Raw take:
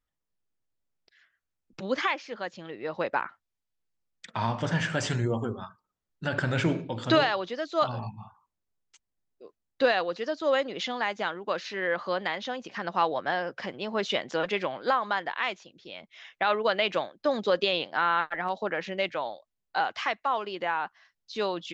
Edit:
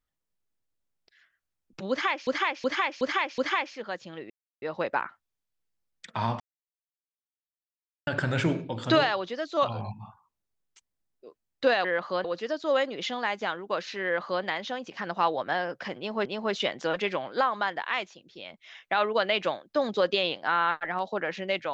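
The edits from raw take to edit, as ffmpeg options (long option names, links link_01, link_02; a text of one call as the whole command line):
ffmpeg -i in.wav -filter_complex "[0:a]asplit=13[link_01][link_02][link_03][link_04][link_05][link_06][link_07][link_08][link_09][link_10][link_11][link_12][link_13];[link_01]atrim=end=2.272[link_14];[link_02]atrim=start=1.898:end=2.272[link_15];[link_03]atrim=start=1.898:end=2.272[link_16];[link_04]atrim=start=1.898:end=2.272[link_17];[link_05]atrim=start=1.898:end=2.82,asetpts=PTS-STARTPTS,afade=type=out:start_time=0.918:duration=0.004:curve=hsin,apad=pad_dur=0.32[link_18];[link_06]atrim=start=2.82:end=4.6,asetpts=PTS-STARTPTS,afade=type=in:duration=0.004:curve=hsin,afade=type=out:start_time=1.776:duration=0.004:curve=hsin[link_19];[link_07]atrim=start=4.6:end=6.27,asetpts=PTS-STARTPTS,volume=0[link_20];[link_08]atrim=start=6.27:end=7.774,asetpts=PTS-STARTPTS,afade=type=in:duration=0.004:curve=hsin[link_21];[link_09]atrim=start=7.77:end=8.09,asetpts=PTS-STARTPTS,asetrate=41013,aresample=44100,atrim=end_sample=15174,asetpts=PTS-STARTPTS[link_22];[link_10]atrim=start=8.086:end=10.022[link_23];[link_11]atrim=start=11.808:end=12.212[link_24];[link_12]atrim=start=10.018:end=14.032[link_25];[link_13]atrim=start=13.748[link_26];[link_14][link_15]acrossfade=duration=0.004:curve1=hsin:curve2=hsin[link_27];[link_27][link_16]acrossfade=duration=0.004:curve1=hsin:curve2=hsin[link_28];[link_28][link_17]acrossfade=duration=0.004:curve1=hsin:curve2=hsin[link_29];[link_18][link_19][link_20][link_21]concat=n=4:v=0:a=1[link_30];[link_29][link_30]acrossfade=duration=0.004:curve1=hsin:curve2=hsin[link_31];[link_31][link_22]acrossfade=duration=0.004:curve1=hsin:curve2=hsin[link_32];[link_32][link_23]acrossfade=duration=0.004:curve1=hsin:curve2=hsin[link_33];[link_33][link_24]acrossfade=duration=0.004:curve1=hsin:curve2=hsin[link_34];[link_34][link_25]acrossfade=duration=0.004:curve1=hsin:curve2=hsin[link_35];[link_35][link_26]acrossfade=duration=0.004:curve1=hsin:curve2=hsin" out.wav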